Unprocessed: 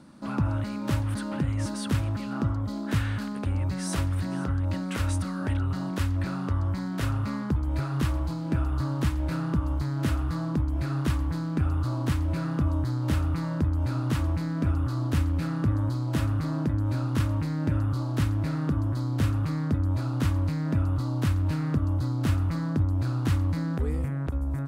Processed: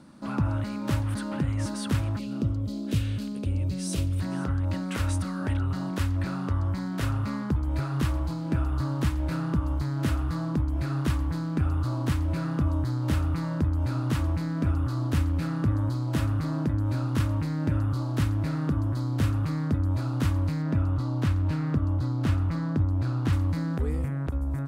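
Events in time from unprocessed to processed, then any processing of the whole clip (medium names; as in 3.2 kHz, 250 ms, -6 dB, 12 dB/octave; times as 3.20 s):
2.19–4.20 s: high-order bell 1.2 kHz -13 dB
20.62–23.33 s: treble shelf 7.2 kHz -10 dB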